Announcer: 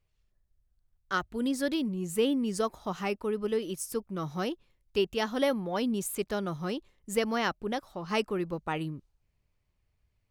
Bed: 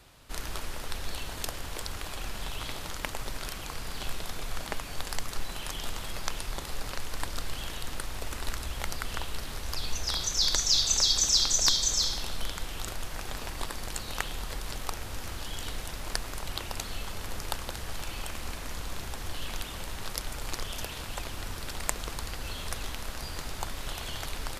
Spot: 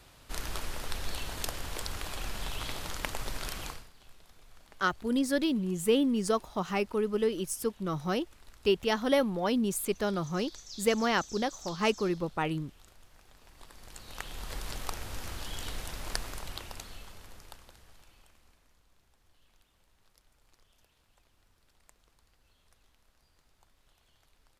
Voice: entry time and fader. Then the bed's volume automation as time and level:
3.70 s, +1.5 dB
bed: 0:03.68 −0.5 dB
0:03.92 −22 dB
0:13.38 −22 dB
0:14.57 −2 dB
0:16.23 −2 dB
0:18.84 −31.5 dB

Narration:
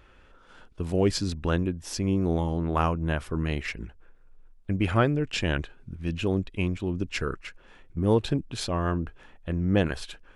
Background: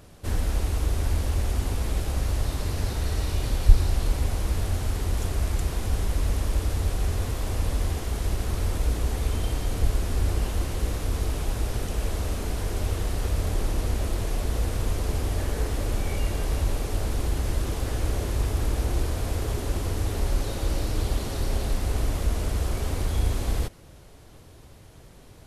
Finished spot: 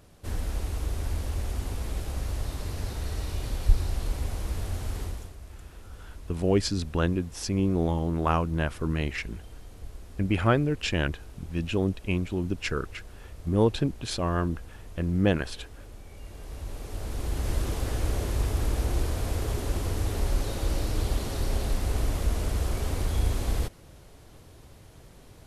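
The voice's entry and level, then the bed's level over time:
5.50 s, 0.0 dB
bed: 0:05.03 −5.5 dB
0:05.37 −19 dB
0:16.09 −19 dB
0:17.52 −1.5 dB

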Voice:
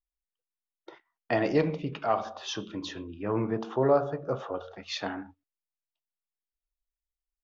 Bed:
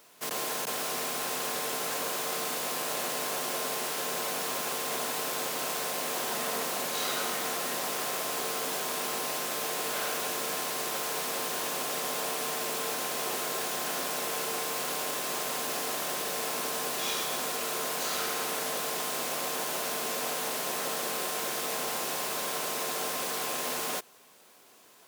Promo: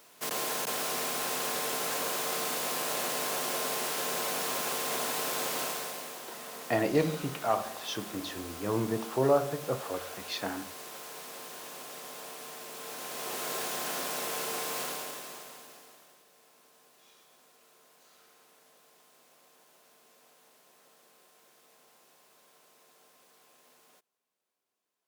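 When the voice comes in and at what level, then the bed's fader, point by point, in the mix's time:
5.40 s, −1.5 dB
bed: 0:05.60 0 dB
0:06.20 −11.5 dB
0:12.69 −11.5 dB
0:13.51 −2 dB
0:14.82 −2 dB
0:16.26 −29.5 dB

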